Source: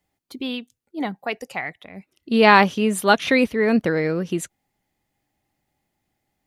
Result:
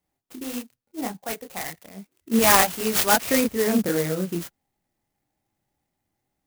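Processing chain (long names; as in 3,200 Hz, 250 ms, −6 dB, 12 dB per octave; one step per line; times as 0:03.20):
0:02.39–0:03.14: RIAA equalisation recording
multi-voice chorus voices 2, 0.86 Hz, delay 27 ms, depth 4.9 ms
converter with an unsteady clock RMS 0.086 ms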